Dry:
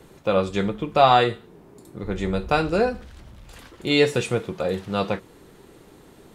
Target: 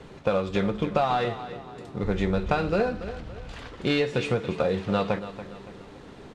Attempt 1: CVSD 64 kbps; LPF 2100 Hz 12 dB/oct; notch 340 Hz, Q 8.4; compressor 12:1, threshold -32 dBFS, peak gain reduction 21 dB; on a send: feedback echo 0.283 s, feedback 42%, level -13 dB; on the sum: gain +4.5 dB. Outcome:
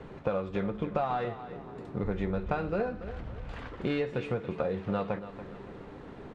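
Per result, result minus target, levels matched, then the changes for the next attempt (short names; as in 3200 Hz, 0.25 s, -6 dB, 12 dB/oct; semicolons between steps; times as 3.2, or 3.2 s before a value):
4000 Hz band -6.5 dB; compressor: peak gain reduction +6 dB
change: LPF 4300 Hz 12 dB/oct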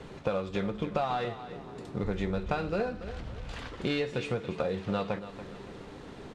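compressor: peak gain reduction +6.5 dB
change: compressor 12:1, threshold -25 dBFS, peak gain reduction 15 dB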